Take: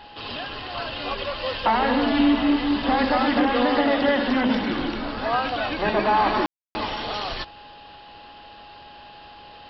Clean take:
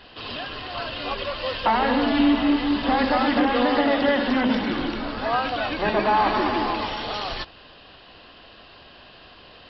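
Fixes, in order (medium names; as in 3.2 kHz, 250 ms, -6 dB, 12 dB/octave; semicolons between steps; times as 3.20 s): band-stop 830 Hz, Q 30; room tone fill 6.46–6.75 s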